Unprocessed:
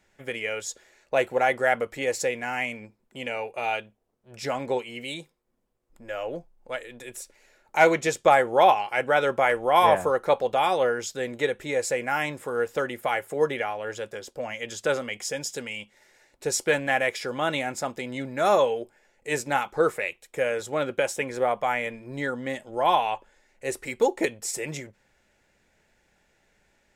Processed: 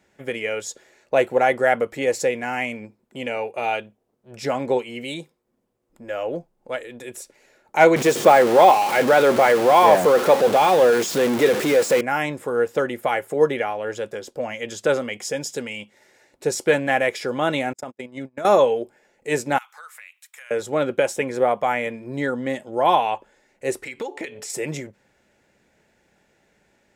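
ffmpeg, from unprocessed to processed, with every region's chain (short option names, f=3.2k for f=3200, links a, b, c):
-filter_complex "[0:a]asettb=1/sr,asplit=3[a][b][c];[a]atrim=end=7.964[d];[b]atrim=start=7.96:end=12.01,asetpts=PTS-STARTPTS,afade=t=in:d=0.004:c=qsin,afade=t=out:st=4.046:d=0.004:c=qsin,aeval=exprs='val(0)+0.5*0.0794*sgn(val(0))':c=same,highpass=180[e];[c]atrim=start=12.006[f];[d][e]acrossfade=d=0.004:c1=hsin:c2=qsin[g];[g][f]acrossfade=d=0.004:c1=qsin:c2=hsin,asettb=1/sr,asplit=3[h][i][j];[h]atrim=end=17.734[k];[i]atrim=start=17.73:end=18.45,asetpts=PTS-STARTPTS,afade=t=in:d=0.004:c=qsin,afade=t=out:st=0.716:d=0.004:c=qsin,agate=range=-42dB:threshold=-33dB:ratio=16:release=100:detection=peak,bandreject=f=4.2k:w=5.3,acompressor=threshold=-32dB:ratio=10:attack=3.2:release=140:knee=1:detection=peak[l];[j]atrim=start=18.446[m];[k][l]acrossfade=d=0.004:c1=hsin:c2=qsin[n];[n][m]acrossfade=d=0.004:c1=qsin:c2=hsin,asettb=1/sr,asplit=3[o][p][q];[o]atrim=end=19.584[r];[p]atrim=start=19.58:end=20.51,asetpts=PTS-STARTPTS,afade=t=in:d=0.004:c=qsin,afade=t=out:st=0.926:d=0.004:c=qsin,highpass=f=1.2k:w=0.5412,highpass=f=1.2k:w=1.3066,highshelf=f=12k:g=10.5,acompressor=threshold=-42dB:ratio=5:attack=3.2:release=140:knee=1:detection=peak[s];[q]atrim=start=20.506[t];[r][s]acrossfade=d=0.004:c1=hsin:c2=qsin[u];[u][t]acrossfade=d=0.004:c1=qsin:c2=hsin,asettb=1/sr,asplit=3[v][w][x];[v]atrim=end=23.844[y];[w]atrim=start=23.84:end=24.5,asetpts=PTS-STARTPTS,afade=t=in:d=0.004:c=qsin,afade=t=out:st=0.656:d=0.004:c=qsin,equalizer=f=2.5k:t=o:w=2.5:g=12.5,bandreject=f=144.1:t=h:w=4,bandreject=f=288.2:t=h:w=4,bandreject=f=432.3:t=h:w=4,bandreject=f=576.4:t=h:w=4,bandreject=f=720.5:t=h:w=4,bandreject=f=864.6:t=h:w=4,bandreject=f=1.0087k:t=h:w=4,bandreject=f=1.1528k:t=h:w=4,acompressor=threshold=-35dB:ratio=4:attack=3.2:release=140:knee=1:detection=peak[z];[x]atrim=start=24.496[aa];[y][z]acrossfade=d=0.004:c1=hsin:c2=qsin[ab];[ab][aa]acrossfade=d=0.004:c1=qsin:c2=hsin,deesser=0.45,highpass=f=300:p=1,lowshelf=f=470:g=12,volume=1.5dB"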